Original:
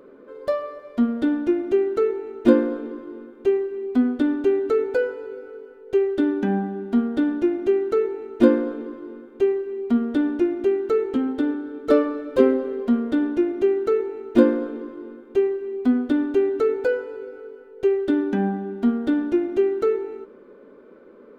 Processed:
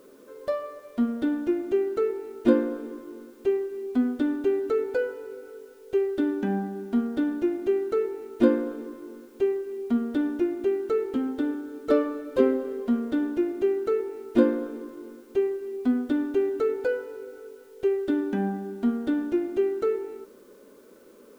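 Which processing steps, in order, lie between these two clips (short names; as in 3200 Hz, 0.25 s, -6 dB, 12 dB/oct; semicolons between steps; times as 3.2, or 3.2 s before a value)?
requantised 10-bit, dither triangular; gain -4.5 dB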